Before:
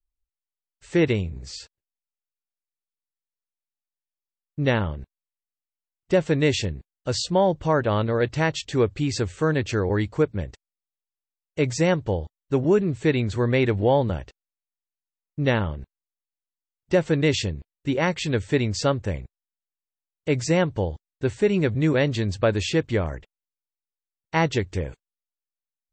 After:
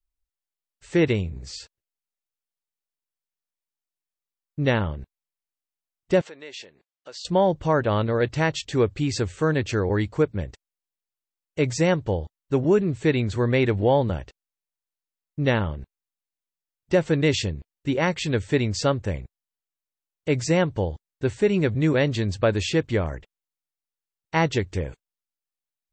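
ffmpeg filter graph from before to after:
-filter_complex "[0:a]asettb=1/sr,asplit=3[a][b][c];[a]atrim=end=6.214[d];[b]atrim=start=6.21:end=7.25,asetpts=PTS-STARTPTS,afade=t=in:d=0.004:c=qsin,afade=t=out:st=1.036:d=0.004:c=qsin,acompressor=threshold=-36dB:ratio=3:attack=3.2:release=140:knee=1:detection=peak,highpass=530,lowpass=6.5k[e];[c]atrim=start=7.246[f];[d][e]acrossfade=d=0.004:c1=hsin:c2=qsin[g];[g][f]acrossfade=d=0.004:c1=qsin:c2=hsin"

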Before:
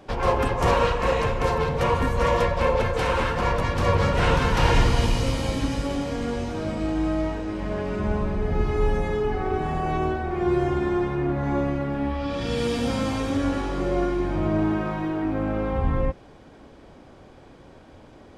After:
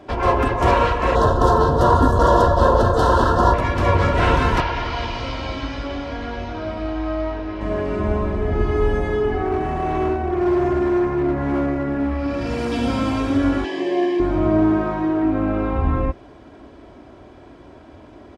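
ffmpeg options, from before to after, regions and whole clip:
-filter_complex "[0:a]asettb=1/sr,asplit=3[a][b][c];[a]atrim=end=1.154[d];[b]atrim=start=1.15:end=3.54,asetpts=PTS-STARTPTS,afade=t=in:d=0.004:c=qsin,afade=t=out:st=2.386:d=0.004:c=qsin,acontrast=50,aeval=exprs='clip(val(0),-1,0.126)':c=same,asuperstop=centerf=2300:order=4:qfactor=1.1[e];[c]atrim=start=3.536[f];[d][e]acrossfade=d=0.004:c1=hsin:c2=qsin[g];[g][f]acrossfade=d=0.004:c1=qsin:c2=hsin,asettb=1/sr,asplit=3[h][i][j];[h]atrim=end=4.604[k];[i]atrim=start=4.6:end=7.61,asetpts=PTS-STARTPTS,afade=t=in:d=0.004:c=qsin,afade=t=out:st=3.006:d=0.004:c=qsin,lowpass=f=5.2k:w=0.5412,lowpass=f=5.2k:w=1.3066,bandreject=f=1.8k:w=29,acrossover=split=91|560[l][m][n];[l]acompressor=threshold=-32dB:ratio=4[o];[m]acompressor=threshold=-38dB:ratio=4[p];[n]acompressor=threshold=-27dB:ratio=4[q];[o][p][q]amix=inputs=3:normalize=0[r];[j]atrim=start=7.606[s];[k][r]acrossfade=d=0.004:c1=hsin:c2=qsin[t];[t][s]acrossfade=d=0.004:c1=qsin:c2=hsin,asettb=1/sr,asplit=3[u][v][w];[u]atrim=end=9.454[x];[v]atrim=start=9.45:end=12.72,asetpts=PTS-STARTPTS,afade=t=in:d=0.004:c=qsin,afade=t=out:st=3.266:d=0.004:c=qsin,equalizer=f=3.4k:w=5.5:g=-13.5,asoftclip=type=hard:threshold=-22dB[y];[w]atrim=start=12.716[z];[x][y]acrossfade=d=0.004:c1=hsin:c2=qsin[aa];[aa][z]acrossfade=d=0.004:c1=qsin:c2=hsin,asettb=1/sr,asplit=3[ab][ac][ad];[ab]atrim=end=13.644[ae];[ac]atrim=start=13.64:end=14.2,asetpts=PTS-STARTPTS,afade=t=in:d=0.004:c=qsin,afade=t=out:st=0.556:d=0.004:c=qsin,asuperstop=centerf=1400:order=12:qfactor=4.5,highpass=f=220:w=0.5412,highpass=f=220:w=1.3066,equalizer=f=240:t=q:w=4:g=-9,equalizer=f=540:t=q:w=4:g=-6,equalizer=f=1.1k:t=q:w=4:g=-6,equalizer=f=1.7k:t=q:w=4:g=6,equalizer=f=3k:t=q:w=4:g=9,equalizer=f=5k:t=q:w=4:g=5,lowpass=f=9.8k:w=0.5412,lowpass=f=9.8k:w=1.3066[af];[ad]atrim=start=14.196[ag];[ae][af]acrossfade=d=0.004:c1=hsin:c2=qsin[ah];[ah][ag]acrossfade=d=0.004:c1=qsin:c2=hsin,highpass=48,highshelf=f=4.1k:g=-9.5,aecho=1:1:3:0.47,volume=4.5dB"

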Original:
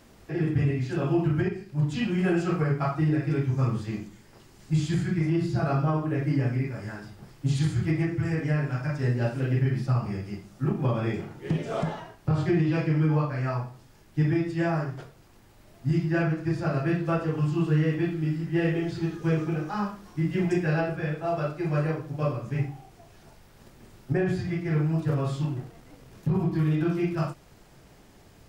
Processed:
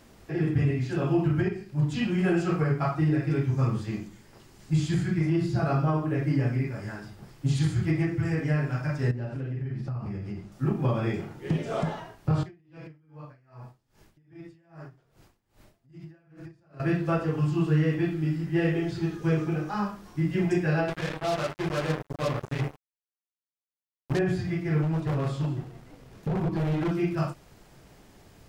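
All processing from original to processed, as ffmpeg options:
-filter_complex "[0:a]asettb=1/sr,asplit=3[a][b][c];[a]atrim=end=9.114[d];[b]atrim=start=9.11:end=10.52,asetpts=PTS-STARTPTS,afade=t=in:d=0.004:c=qsin,afade=t=out:st=1.406:d=0.004:c=qsin,equalizer=f=85:w=0.33:g=4.5,acompressor=threshold=-30dB:ratio=6:attack=3.2:release=140:knee=1:detection=peak,lowpass=f=3.1k:p=1[e];[c]atrim=start=10.516[f];[d][e]acrossfade=d=0.004:c1=hsin:c2=qsin[g];[g][f]acrossfade=d=0.004:c1=qsin:c2=hsin,asettb=1/sr,asplit=3[h][i][j];[h]atrim=end=12.434[k];[i]atrim=start=12.43:end=16.8,asetpts=PTS-STARTPTS,afade=t=in:d=0.004:c=qsin,afade=t=out:st=4.366:d=0.004:c=qsin,acompressor=threshold=-37dB:ratio=12:attack=3.2:release=140:knee=1:detection=peak,aeval=exprs='val(0)*pow(10,-24*(0.5-0.5*cos(2*PI*2.5*n/s))/20)':c=same[l];[j]atrim=start=16.796[m];[k][l]acrossfade=d=0.004:c1=hsin:c2=qsin[n];[n][m]acrossfade=d=0.004:c1=qsin:c2=hsin,asettb=1/sr,asplit=3[o][p][q];[o]atrim=end=20.884[r];[p]atrim=start=20.88:end=24.19,asetpts=PTS-STARTPTS,afade=t=in:d=0.004:c=qsin,afade=t=out:st=3.306:d=0.004:c=qsin,bandreject=f=50:t=h:w=6,bandreject=f=100:t=h:w=6,bandreject=f=150:t=h:w=6,bandreject=f=200:t=h:w=6,bandreject=f=250:t=h:w=6,bandreject=f=300:t=h:w=6,bandreject=f=350:t=h:w=6,bandreject=f=400:t=h:w=6,bandreject=f=450:t=h:w=6,acrusher=bits=4:mix=0:aa=0.5[s];[q]atrim=start=24.186[t];[r][s]acrossfade=d=0.004:c1=hsin:c2=qsin[u];[u][t]acrossfade=d=0.004:c1=qsin:c2=hsin,asettb=1/sr,asplit=3[v][w][x];[v]atrim=end=24.824[y];[w]atrim=start=24.82:end=26.92,asetpts=PTS-STARTPTS,afade=t=in:d=0.004:c=qsin,afade=t=out:st=2.096:d=0.004:c=qsin,highshelf=f=5.6k:g=-5,aeval=exprs='0.0794*(abs(mod(val(0)/0.0794+3,4)-2)-1)':c=same,aecho=1:1:174:0.178,atrim=end_sample=92610[z];[x]atrim=start=26.916[aa];[y][z]acrossfade=d=0.004:c1=hsin:c2=qsin[ab];[ab][aa]acrossfade=d=0.004:c1=qsin:c2=hsin"

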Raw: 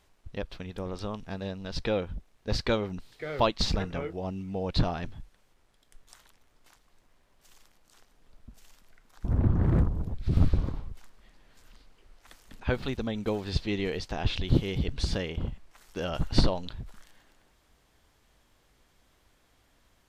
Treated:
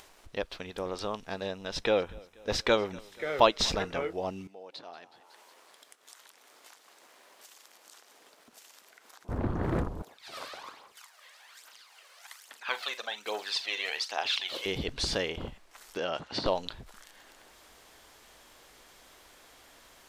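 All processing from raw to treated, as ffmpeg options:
-filter_complex "[0:a]asettb=1/sr,asplit=3[a][b][c];[a]atrim=end=1.464[d];[b]atrim=start=1.46:end=3.73,asetpts=PTS-STARTPTS,afade=t=in:d=0.004:c=qsin,afade=t=out:st=2.266:d=0.004:c=qsin,bandreject=f=4.5k:w=5.6,aecho=1:1:241|482|723|964:0.0631|0.0353|0.0198|0.0111,atrim=end_sample=100107[e];[c]atrim=start=3.726[f];[d][e]acrossfade=d=0.004:c1=hsin:c2=qsin[g];[g][f]acrossfade=d=0.004:c1=qsin:c2=hsin,asettb=1/sr,asplit=3[h][i][j];[h]atrim=end=4.474[k];[i]atrim=start=4.47:end=9.29,asetpts=PTS-STARTPTS,afade=t=in:d=0.004:c=qsin,afade=t=out:st=4.816:d=0.004:c=qsin,acompressor=threshold=-57dB:ratio=2:attack=3.2:release=140:knee=1:detection=peak,highpass=290,asplit=7[l][m][n][o][p][q][r];[m]adelay=185,afreqshift=90,volume=-17dB[s];[n]adelay=370,afreqshift=180,volume=-21.4dB[t];[o]adelay=555,afreqshift=270,volume=-25.9dB[u];[p]adelay=740,afreqshift=360,volume=-30.3dB[v];[q]adelay=925,afreqshift=450,volume=-34.7dB[w];[r]adelay=1110,afreqshift=540,volume=-39.2dB[x];[l][s][t][u][v][w][x]amix=inputs=7:normalize=0,atrim=end_sample=212562[y];[j]atrim=start=9.286[z];[k][y]acrossfade=d=0.004:c1=hsin:c2=qsin[aa];[aa][z]acrossfade=d=0.004:c1=qsin:c2=hsin,asettb=1/sr,asplit=3[ab][ac][ad];[ab]atrim=end=10.024[ae];[ac]atrim=start=10.02:end=14.66,asetpts=PTS-STARTPTS,afade=t=in:d=0.004:c=qsin,afade=t=out:st=4.636:d=0.004:c=qsin,highpass=920,aphaser=in_gain=1:out_gain=1:delay=2:decay=0.57:speed=1.2:type=triangular,asplit=2[af][ag];[ag]adelay=42,volume=-13dB[ah];[af][ah]amix=inputs=2:normalize=0,atrim=end_sample=204624[ai];[ad]atrim=start=14.656[aj];[ae][ai]acrossfade=d=0.004:c1=hsin:c2=qsin[ak];[ak][aj]acrossfade=d=0.004:c1=qsin:c2=hsin,asettb=1/sr,asplit=3[al][am][an];[al]atrim=end=15.974[ao];[am]atrim=start=15.97:end=16.46,asetpts=PTS-STARTPTS,afade=t=in:d=0.004:c=qsin,afade=t=out:st=0.486:d=0.004:c=qsin,acompressor=threshold=-31dB:ratio=2:attack=3.2:release=140:knee=1:detection=peak,highpass=130,lowpass=5k[ap];[an]atrim=start=16.456[aq];[ao][ap]acrossfade=d=0.004:c1=hsin:c2=qsin[ar];[ar][aq]acrossfade=d=0.004:c1=qsin:c2=hsin,bass=f=250:g=-14,treble=f=4k:g=2,acompressor=mode=upward:threshold=-51dB:ratio=2.5,volume=4dB"

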